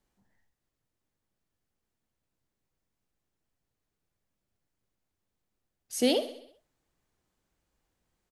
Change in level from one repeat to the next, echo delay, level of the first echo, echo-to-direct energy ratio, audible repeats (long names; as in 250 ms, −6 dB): −5.0 dB, 65 ms, −14.0 dB, −12.5 dB, 5